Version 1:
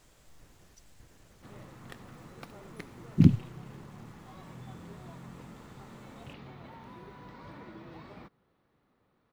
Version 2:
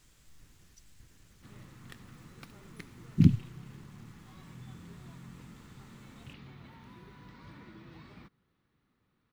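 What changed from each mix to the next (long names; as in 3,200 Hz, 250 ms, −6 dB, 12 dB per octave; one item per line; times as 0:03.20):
master: add parametric band 630 Hz −11.5 dB 1.6 octaves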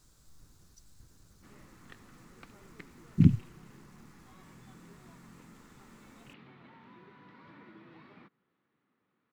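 speech: add flat-topped bell 2,400 Hz −9 dB 1.1 octaves
background: add band-pass filter 220–2,800 Hz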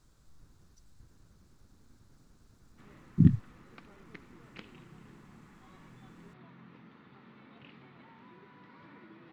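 speech: add high-shelf EQ 4,300 Hz −10.5 dB
background: entry +1.35 s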